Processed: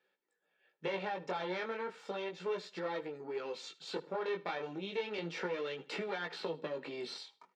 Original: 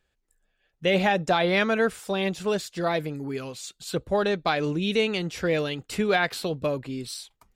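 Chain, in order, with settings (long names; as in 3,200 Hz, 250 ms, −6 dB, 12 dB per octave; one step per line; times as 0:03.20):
one-sided soft clipper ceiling −28.5 dBFS
downward compressor, threshold −33 dBFS, peak gain reduction 12.5 dB
elliptic high-pass filter 160 Hz
low-shelf EQ 220 Hz −12 dB
notch filter 2,900 Hz, Q 27
comb filter 2.2 ms, depth 40%
repeating echo 77 ms, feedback 28%, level −20 dB
chorus effect 0.34 Hz, delay 15.5 ms, depth 6.7 ms
high-frequency loss of the air 190 metres
0:05.18–0:07.18: multiband upward and downward compressor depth 70%
level +4 dB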